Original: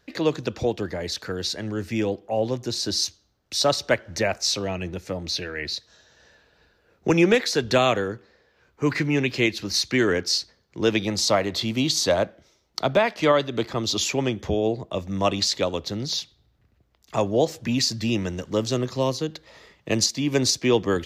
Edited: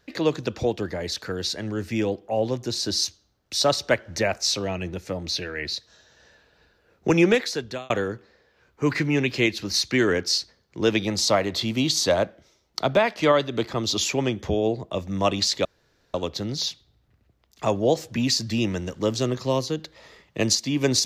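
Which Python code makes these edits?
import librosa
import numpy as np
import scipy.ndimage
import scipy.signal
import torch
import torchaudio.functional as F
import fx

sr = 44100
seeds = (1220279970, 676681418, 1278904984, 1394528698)

y = fx.edit(x, sr, fx.fade_out_span(start_s=7.27, length_s=0.63),
    fx.insert_room_tone(at_s=15.65, length_s=0.49), tone=tone)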